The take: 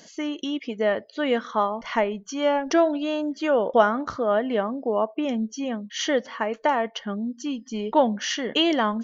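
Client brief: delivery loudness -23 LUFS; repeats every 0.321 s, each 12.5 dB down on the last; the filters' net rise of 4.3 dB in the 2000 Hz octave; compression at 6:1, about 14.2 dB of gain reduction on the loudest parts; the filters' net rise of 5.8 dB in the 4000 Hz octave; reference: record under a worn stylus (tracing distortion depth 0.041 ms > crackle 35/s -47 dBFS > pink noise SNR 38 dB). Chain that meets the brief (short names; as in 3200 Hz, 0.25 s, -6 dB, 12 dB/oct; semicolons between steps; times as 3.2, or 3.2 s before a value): bell 2000 Hz +4 dB; bell 4000 Hz +6.5 dB; compressor 6:1, threshold -28 dBFS; feedback echo 0.321 s, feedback 24%, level -12.5 dB; tracing distortion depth 0.041 ms; crackle 35/s -47 dBFS; pink noise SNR 38 dB; gain +8.5 dB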